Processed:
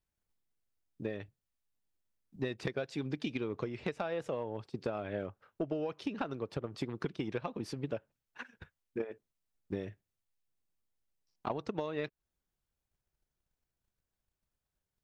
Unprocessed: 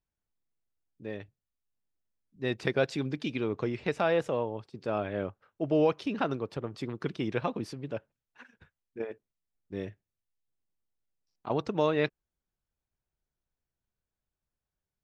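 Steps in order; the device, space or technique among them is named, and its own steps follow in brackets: drum-bus smash (transient shaper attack +8 dB, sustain +1 dB; compression 10:1, threshold -31 dBFS, peak gain reduction 15 dB; saturation -22 dBFS, distortion -20 dB)

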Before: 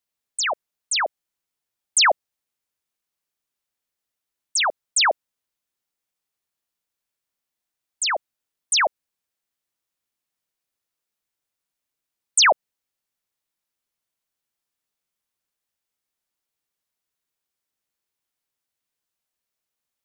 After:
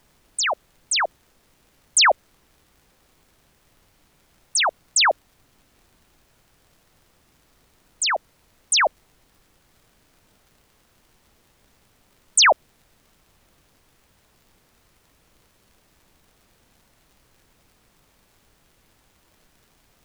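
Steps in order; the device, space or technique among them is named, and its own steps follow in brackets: warped LP (warped record 33 1/3 rpm, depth 100 cents; crackle; pink noise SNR 32 dB); trim +1 dB

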